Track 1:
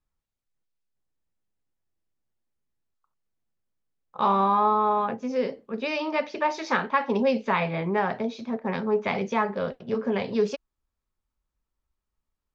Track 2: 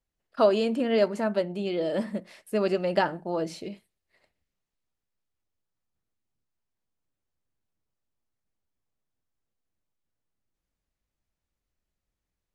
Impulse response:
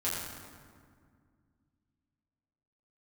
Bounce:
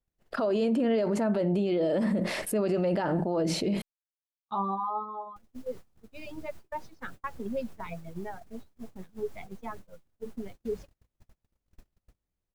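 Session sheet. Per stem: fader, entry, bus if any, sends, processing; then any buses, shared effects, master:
−4.5 dB, 0.30 s, no send, spectral dynamics exaggerated over time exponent 2; reverb reduction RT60 0.63 s; automatic ducking −6 dB, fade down 0.85 s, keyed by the second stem
−5.0 dB, 0.00 s, muted 0:03.82–0:05.36, no send, envelope flattener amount 70%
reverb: not used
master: noise gate −43 dBFS, range −39 dB; tilt shelving filter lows +4 dB, about 1,100 Hz; brickwall limiter −20 dBFS, peak gain reduction 9 dB

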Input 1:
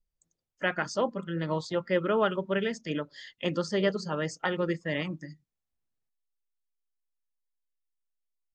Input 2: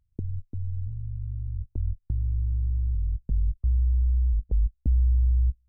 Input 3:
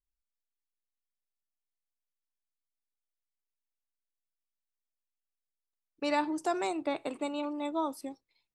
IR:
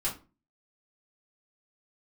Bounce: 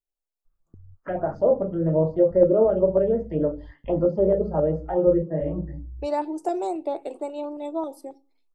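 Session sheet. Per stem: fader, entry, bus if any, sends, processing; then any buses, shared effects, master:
+0.5 dB, 0.45 s, send −5 dB, brickwall limiter −20.5 dBFS, peak gain reduction 7.5 dB; envelope-controlled low-pass 570–1,200 Hz down, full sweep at −27.5 dBFS; automatic ducking −17 dB, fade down 1.50 s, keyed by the third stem
−16.5 dB, 0.55 s, no send, no processing
−7.0 dB, 0.00 s, send −17.5 dB, flat-topped bell 530 Hz +12.5 dB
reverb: on, RT60 0.35 s, pre-delay 3 ms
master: high-shelf EQ 7,900 Hz +5 dB; auto-filter notch saw up 3.7 Hz 800–4,300 Hz

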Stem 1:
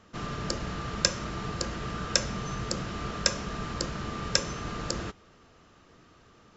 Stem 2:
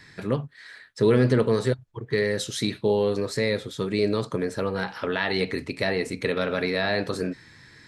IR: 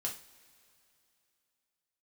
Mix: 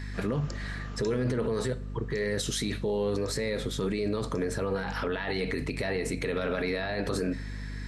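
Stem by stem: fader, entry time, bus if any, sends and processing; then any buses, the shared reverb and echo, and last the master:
0:01.04 −10 dB → 0:01.26 −23 dB, 0.00 s, no send, no processing
+2.5 dB, 0.00 s, send −12.5 dB, brickwall limiter −18.5 dBFS, peak gain reduction 10 dB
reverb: on, pre-delay 3 ms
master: parametric band 4,100 Hz −2.5 dB; mains hum 50 Hz, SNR 11 dB; brickwall limiter −21 dBFS, peak gain reduction 10 dB

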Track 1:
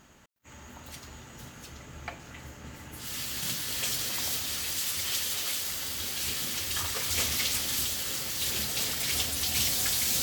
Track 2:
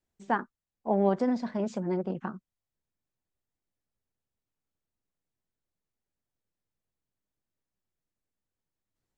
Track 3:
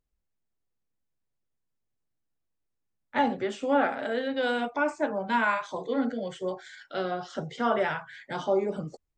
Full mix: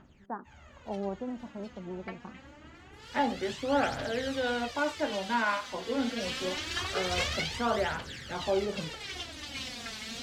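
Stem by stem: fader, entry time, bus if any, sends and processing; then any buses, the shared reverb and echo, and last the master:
0:05.74 −7.5 dB → 0:06.39 −0.5 dB → 0:07.26 −0.5 dB → 0:07.71 −8 dB, 0.00 s, no send, phase shifter 0.25 Hz, delay 4.7 ms, feedback 71%; low-pass filter 3,500 Hz 12 dB per octave
−10.0 dB, 0.00 s, no send, low-pass filter 1,400 Hz 24 dB per octave
−3.5 dB, 0.00 s, no send, no processing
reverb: not used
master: no processing

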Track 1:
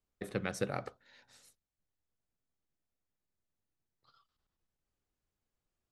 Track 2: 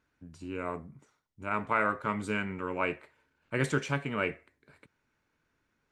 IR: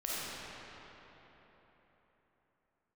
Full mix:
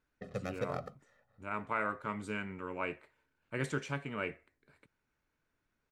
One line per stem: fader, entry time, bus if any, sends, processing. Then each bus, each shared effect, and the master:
−5.0 dB, 0.00 s, no send, running median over 15 samples; comb filter 1.6 ms, depth 95%; low-pass that shuts in the quiet parts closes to 1,300 Hz, open at −35.5 dBFS
−6.5 dB, 0.00 s, no send, no processing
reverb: not used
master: no processing

